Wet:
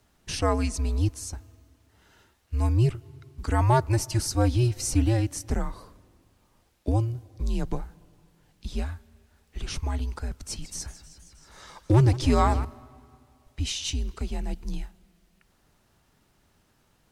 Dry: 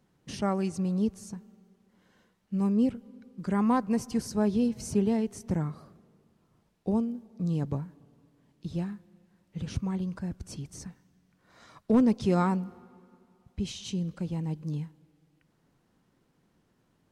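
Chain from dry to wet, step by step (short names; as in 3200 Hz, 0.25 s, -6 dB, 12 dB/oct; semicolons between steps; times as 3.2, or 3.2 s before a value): tilt +1.5 dB/oct; frequency shift -120 Hz; 10.33–12.65 warbling echo 0.158 s, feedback 78%, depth 194 cents, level -15.5 dB; gain +6.5 dB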